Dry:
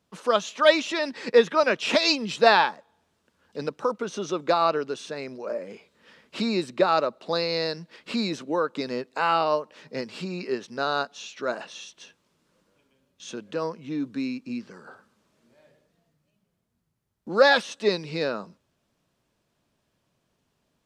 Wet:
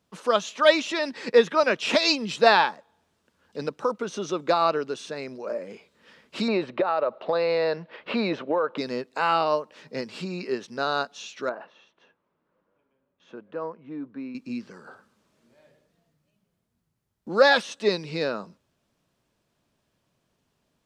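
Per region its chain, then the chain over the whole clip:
0:06.48–0:08.78: drawn EQ curve 280 Hz 0 dB, 570 Hz +11 dB, 3,100 Hz +3 dB, 9,200 Hz −26 dB + downward compressor 12 to 1, threshold −19 dBFS
0:11.49–0:14.35: low-pass filter 1,300 Hz + low-shelf EQ 340 Hz −10.5 dB
whole clip: no processing

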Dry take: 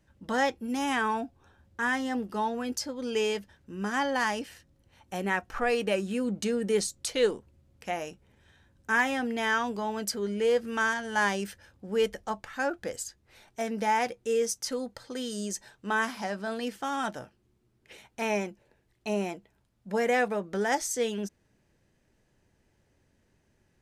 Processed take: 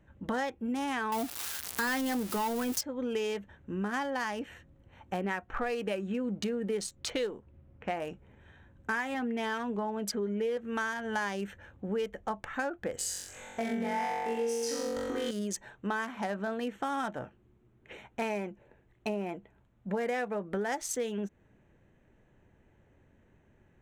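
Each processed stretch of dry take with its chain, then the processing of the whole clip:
0:01.12–0:02.81: spike at every zero crossing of −27 dBFS + leveller curve on the samples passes 2
0:05.21–0:08.02: one scale factor per block 7 bits + low-pass that shuts in the quiet parts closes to 2,200 Hz, open at −24 dBFS
0:09.14–0:10.57: high-shelf EQ 6,400 Hz −5.5 dB + comb filter 4.8 ms, depth 45%
0:12.96–0:15.31: downward compressor 2 to 1, threshold −33 dBFS + flutter between parallel walls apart 3.7 metres, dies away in 1.5 s
whole clip: adaptive Wiener filter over 9 samples; downward compressor 6 to 1, threshold −36 dBFS; level +5.5 dB

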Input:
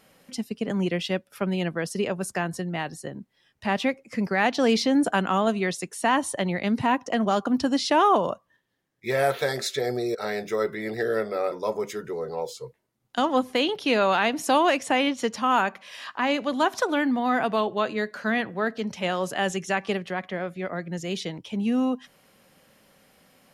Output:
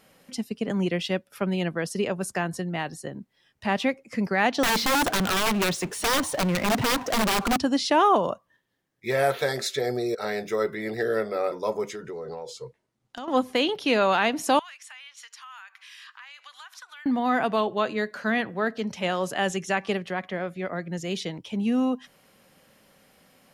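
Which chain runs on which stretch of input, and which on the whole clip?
0:04.63–0:07.57: low-pass filter 2,300 Hz 6 dB per octave + wrap-around overflow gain 19 dB + power curve on the samples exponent 0.5
0:11.89–0:13.28: low-pass filter 8,600 Hz + downward compressor 20 to 1, threshold −31 dBFS + gain into a clipping stage and back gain 27 dB
0:14.59–0:17.06: high-pass filter 1,300 Hz 24 dB per octave + downward compressor 5 to 1, threshold −43 dBFS
whole clip: no processing

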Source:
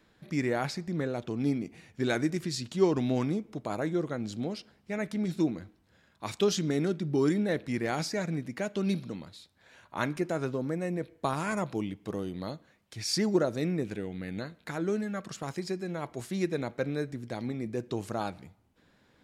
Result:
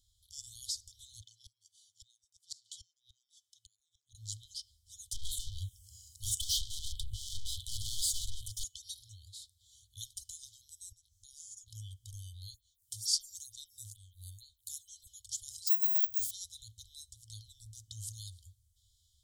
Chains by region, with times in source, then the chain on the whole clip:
0:01.21–0:04.15: Bessel high-pass filter 340 Hz, order 4 + gate with flip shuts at −24 dBFS, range −26 dB + high-shelf EQ 7,100 Hz −11.5 dB
0:05.12–0:08.64: high-shelf EQ 4,700 Hz +4 dB + phaser swept by the level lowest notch 590 Hz, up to 1,500 Hz, full sweep at −23 dBFS + mid-hump overdrive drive 36 dB, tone 1,600 Hz, clips at −16.5 dBFS
0:10.92–0:11.68: downward compressor 2.5 to 1, threshold −52 dBFS + parametric band 6,100 Hz +11.5 dB 0.62 octaves
0:12.54–0:15.07: high-shelf EQ 8,400 Hz +11.5 dB + phaser with staggered stages 2.2 Hz
0:15.67–0:16.31: parametric band 1,900 Hz +13.5 dB 0.97 octaves + bad sample-rate conversion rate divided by 2×, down none, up zero stuff
whole clip: brick-wall band-stop 110–3,000 Hz; octave-band graphic EQ 125/250/2,000/4,000/8,000 Hz −9/+11/−12/−4/+6 dB; automatic gain control gain up to 3.5 dB; level +1 dB

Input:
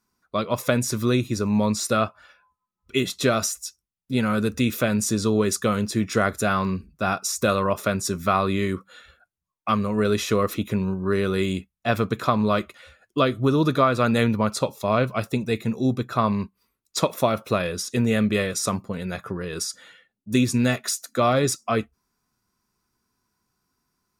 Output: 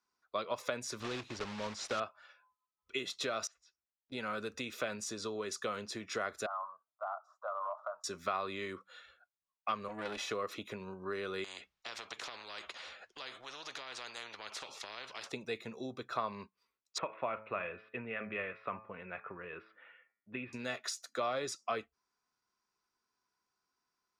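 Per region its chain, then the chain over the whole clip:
0:01.00–0:02.02: one scale factor per block 3 bits + Bessel low-pass filter 6,100 Hz + low-shelf EQ 130 Hz +9 dB
0:03.47–0:04.12: low-pass filter 2,400 Hz + downward compressor 2 to 1, threshold −58 dBFS
0:06.46–0:08.04: elliptic band-pass filter 620–1,300 Hz + downward compressor, threshold −26 dBFS
0:09.88–0:10.31: comb filter 3.5 ms, depth 61% + tube saturation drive 21 dB, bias 0.75
0:11.44–0:15.32: low-pass filter 5,900 Hz + downward compressor 5 to 1, threshold −26 dBFS + every bin compressed towards the loudest bin 4 to 1
0:16.98–0:20.53: elliptic low-pass filter 2,600 Hz, stop band 60 dB + dynamic equaliser 450 Hz, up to −5 dB, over −35 dBFS, Q 0.75 + hum removal 108.8 Hz, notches 23
whole clip: high-shelf EQ 6,600 Hz +4.5 dB; downward compressor, threshold −22 dBFS; three-way crossover with the lows and the highs turned down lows −16 dB, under 380 Hz, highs −20 dB, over 6,300 Hz; level −7.5 dB

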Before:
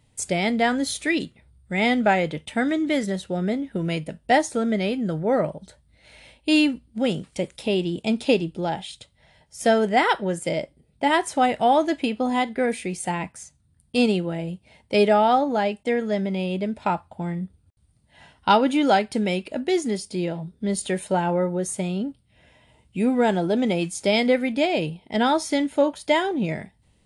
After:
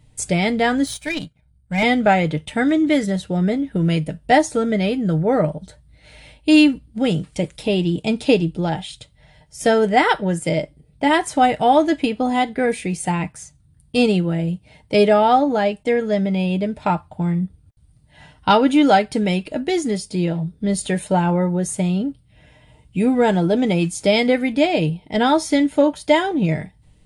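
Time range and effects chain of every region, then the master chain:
0:00.86–0:01.83: comb filter 1.3 ms, depth 73% + power curve on the samples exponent 1.4
whole clip: low-shelf EQ 130 Hz +11.5 dB; comb filter 6.6 ms, depth 37%; level +2.5 dB

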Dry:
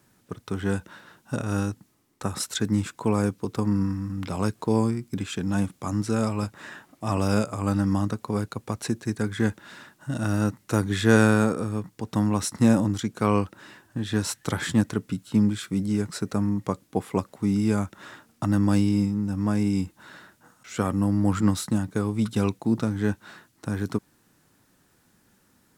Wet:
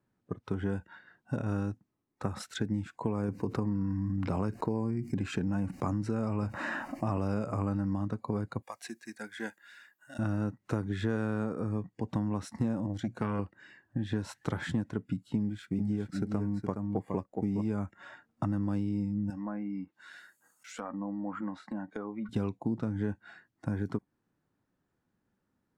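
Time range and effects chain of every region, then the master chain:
0:03.28–0:07.96: notch filter 3,400 Hz, Q 6.1 + envelope flattener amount 50%
0:08.62–0:10.19: high-pass filter 1,400 Hz 6 dB per octave + high-shelf EQ 10,000 Hz +11 dB
0:12.86–0:13.39: mains-hum notches 60/120 Hz + saturating transformer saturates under 580 Hz
0:15.37–0:17.70: mu-law and A-law mismatch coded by A + single-tap delay 416 ms −7 dB
0:19.30–0:22.29: treble cut that deepens with the level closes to 1,500 Hz, closed at −21.5 dBFS + RIAA equalisation recording + downward compressor 3 to 1, threshold −32 dBFS
whole clip: noise reduction from a noise print of the clip's start 14 dB; low-pass filter 1,200 Hz 6 dB per octave; downward compressor 6 to 1, threshold −28 dBFS

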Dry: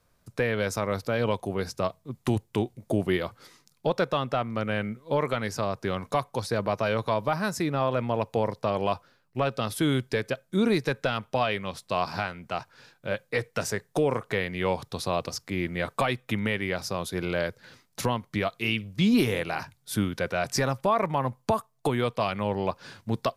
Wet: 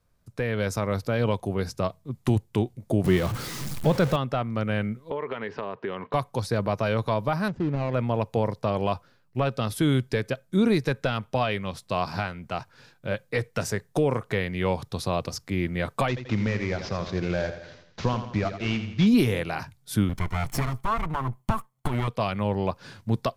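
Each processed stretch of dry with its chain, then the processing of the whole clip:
0:03.04–0:04.16: converter with a step at zero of −30 dBFS + parametric band 150 Hz +6 dB 1.1 octaves
0:05.10–0:06.14: loudspeaker in its box 210–3,300 Hz, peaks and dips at 420 Hz +9 dB, 980 Hz +7 dB, 1,800 Hz +6 dB, 2,900 Hz +6 dB + downward compressor 5 to 1, threshold −28 dBFS
0:07.48–0:07.94: running median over 41 samples + high-frequency loss of the air 140 metres
0:16.08–0:19.07: variable-slope delta modulation 32 kbit/s + repeating echo 85 ms, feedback 50%, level −10 dB
0:20.09–0:22.08: lower of the sound and its delayed copy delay 0.94 ms + parametric band 4,900 Hz −5.5 dB 0.87 octaves
whole clip: low-shelf EQ 200 Hz +8 dB; automatic gain control gain up to 6 dB; level −6.5 dB

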